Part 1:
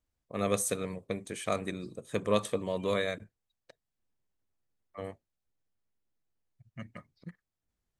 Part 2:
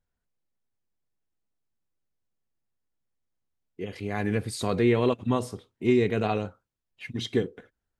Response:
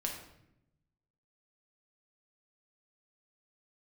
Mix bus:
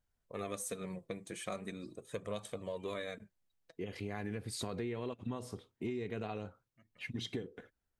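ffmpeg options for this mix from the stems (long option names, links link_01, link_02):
-filter_complex "[0:a]flanger=delay=1.3:depth=4.8:regen=34:speed=0.41:shape=sinusoidal,aeval=exprs='0.133*(cos(1*acos(clip(val(0)/0.133,-1,1)))-cos(1*PI/2))+0.00211*(cos(4*acos(clip(val(0)/0.133,-1,1)))-cos(4*PI/2))':channel_layout=same,volume=-0.5dB[link_01];[1:a]acompressor=threshold=-26dB:ratio=2.5,volume=-3dB,asplit=2[link_02][link_03];[link_03]apad=whole_len=352453[link_04];[link_01][link_04]sidechaincompress=threshold=-54dB:ratio=4:attack=16:release=1280[link_05];[link_05][link_02]amix=inputs=2:normalize=0,acompressor=threshold=-38dB:ratio=3"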